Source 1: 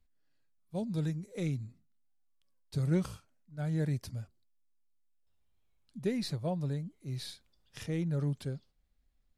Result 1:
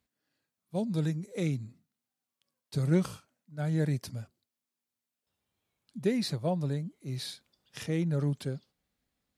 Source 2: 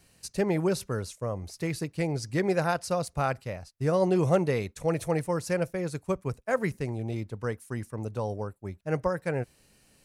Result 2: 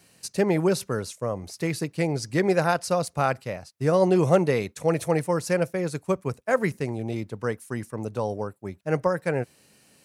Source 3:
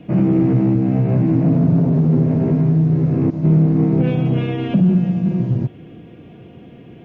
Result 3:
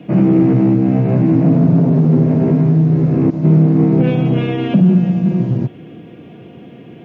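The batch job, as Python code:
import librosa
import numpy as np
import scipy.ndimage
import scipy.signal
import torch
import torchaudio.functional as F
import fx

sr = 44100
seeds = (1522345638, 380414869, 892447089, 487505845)

y = scipy.signal.sosfilt(scipy.signal.butter(2, 130.0, 'highpass', fs=sr, output='sos'), x)
y = y * 10.0 ** (4.5 / 20.0)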